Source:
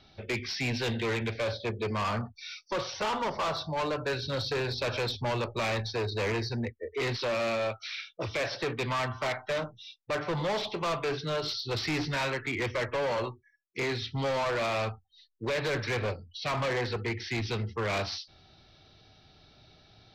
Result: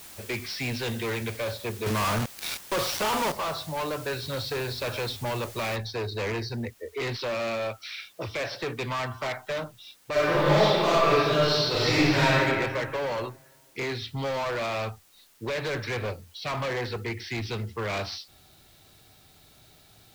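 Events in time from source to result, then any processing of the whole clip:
1.86–3.32 companded quantiser 2-bit
5.76 noise floor step -46 dB -60 dB
10.11–12.43 reverb throw, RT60 1.8 s, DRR -9 dB

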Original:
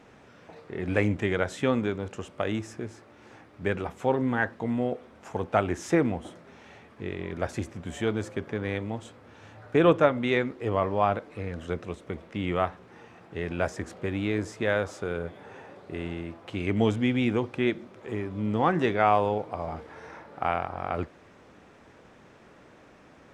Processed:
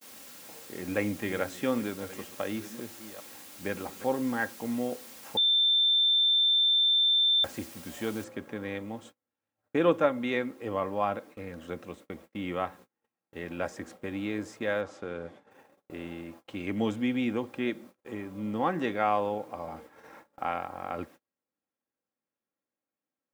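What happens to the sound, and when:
0.66–4.04 reverse delay 0.535 s, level -13.5 dB
5.37–7.44 bleep 3560 Hz -17.5 dBFS
8.24 noise floor step -44 dB -63 dB
14.81–15.51 air absorption 73 m
whole clip: HPF 120 Hz 12 dB/oct; gate -44 dBFS, range -36 dB; comb 3.7 ms, depth 38%; gain -5 dB

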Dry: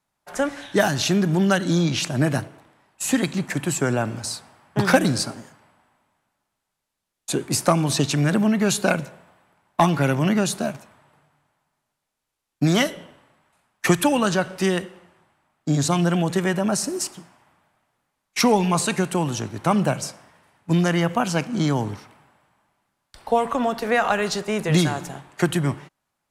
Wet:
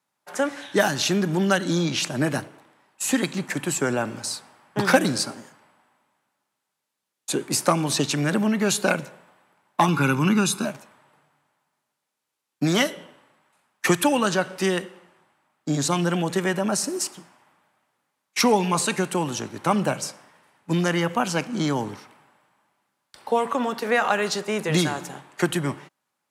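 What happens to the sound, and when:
9.88–10.65 comb 0.8 ms, depth 76%
whole clip: Bessel high-pass 210 Hz, order 2; notch 680 Hz, Q 12

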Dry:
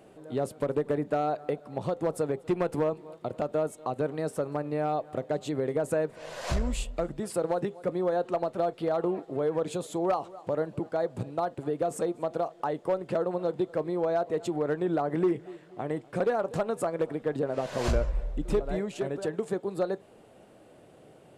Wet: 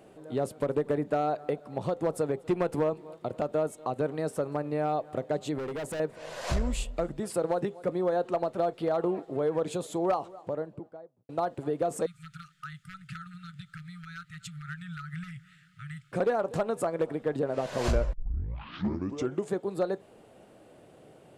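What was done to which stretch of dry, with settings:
5.58–6 hard clip -32.5 dBFS
10.06–11.29 studio fade out
12.06–16.12 brick-wall FIR band-stop 180–1200 Hz
18.13 tape start 1.39 s

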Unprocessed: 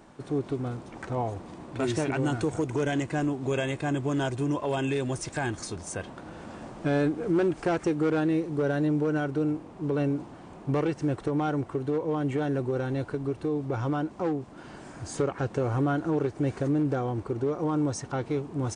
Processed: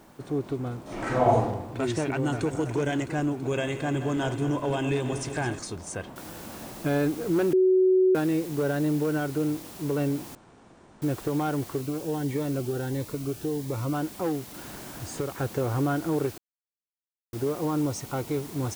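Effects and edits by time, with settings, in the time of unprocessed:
0.83–1.42 reverb throw, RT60 0.84 s, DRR -10 dB
1.99–2.54 echo throw 0.33 s, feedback 65%, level -9.5 dB
3.42–5.59 regenerating reverse delay 0.107 s, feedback 82%, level -11.5 dB
6.16 noise floor step -65 dB -46 dB
7.53–8.15 bleep 373 Hz -16.5 dBFS
10.35–11.02 room tone
11.81–13.94 cascading phaser rising 1.5 Hz
14.54–15.35 three-band squash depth 40%
16.38–17.33 mute
17.87–18.29 notch 1700 Hz, Q 5.9

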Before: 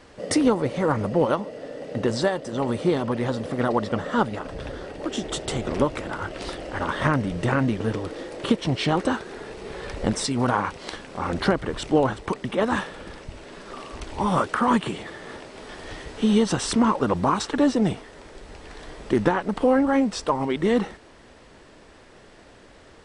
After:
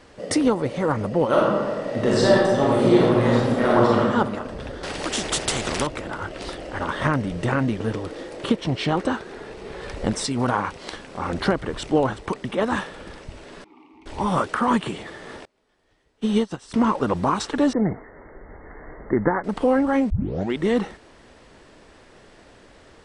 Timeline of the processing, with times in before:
1.27–3.99 reverb throw, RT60 1.4 s, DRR -6 dB
4.83–5.87 spectral compressor 2:1
8.49–9.81 high shelf 6400 Hz -5.5 dB
13.64–14.06 vowel filter u
15.45–16.74 upward expander 2.5:1, over -35 dBFS
17.73–19.44 brick-wall FIR low-pass 2200 Hz
20.1 tape start 0.44 s

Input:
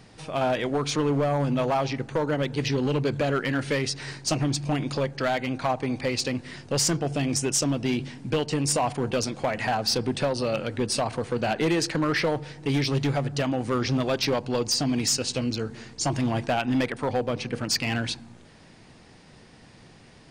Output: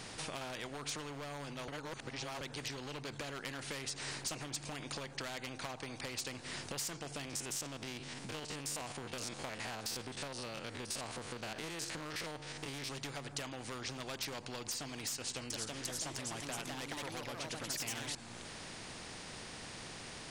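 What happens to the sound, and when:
1.68–2.41 reverse
7.25–12.9 stepped spectrum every 50 ms
15.15–18.15 echoes that change speed 0.351 s, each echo +2 st, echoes 2
whole clip: dynamic EQ 7500 Hz, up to +6 dB, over -44 dBFS, Q 1.8; compressor 10:1, threshold -35 dBFS; spectral compressor 2:1; gain +1 dB

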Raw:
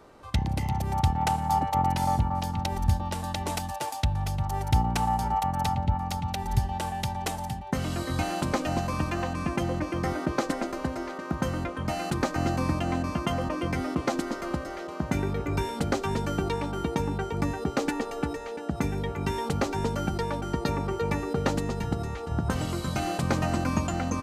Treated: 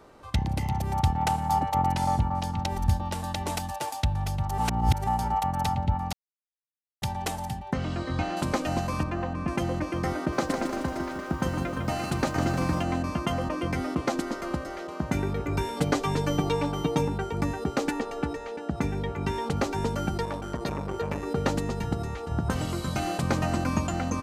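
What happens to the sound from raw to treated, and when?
1.93–2.71 LPF 11000 Hz
4.58–5.07 reverse
6.13–7.02 mute
7.73–8.37 air absorption 130 m
9.03–9.48 LPF 1400 Hz 6 dB/oct
10.17–12.83 lo-fi delay 0.154 s, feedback 55%, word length 9-bit, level -7 dB
15.76–17.08 comb 6.8 ms, depth 88%
18–19.57 high shelf 10000 Hz -11 dB
20.25–21.27 core saturation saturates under 700 Hz

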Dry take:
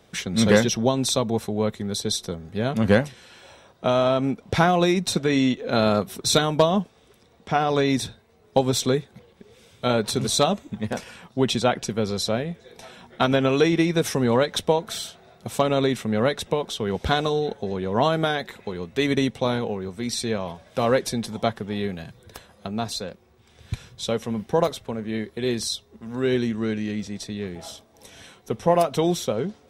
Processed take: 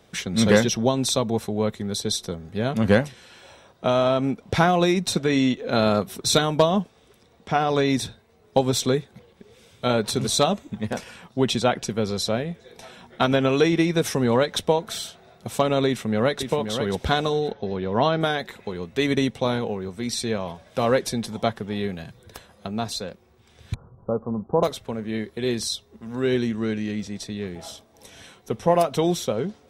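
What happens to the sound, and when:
15.87–16.49 echo throw 0.53 s, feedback 10%, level -7.5 dB
17.51–18.21 steep low-pass 5800 Hz 72 dB/oct
23.74–24.63 steep low-pass 1300 Hz 72 dB/oct

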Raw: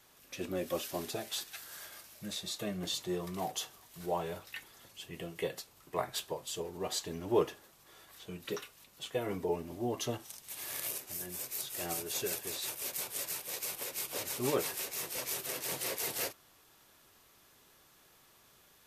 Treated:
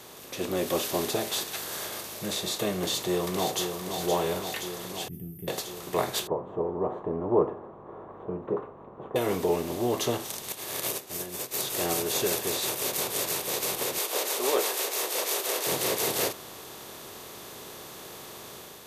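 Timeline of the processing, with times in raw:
2.77–3.73 echo throw 0.52 s, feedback 65%, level -10.5 dB
5.08–5.48 inverse Chebyshev band-stop 500–7600 Hz, stop band 50 dB
6.27–9.16 elliptic low-pass 1100 Hz, stop band 80 dB
10.52–11.54 upward expander 2.5:1, over -48 dBFS
13.98–15.67 HPF 420 Hz 24 dB/oct
whole clip: per-bin compression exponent 0.6; AGC gain up to 4 dB

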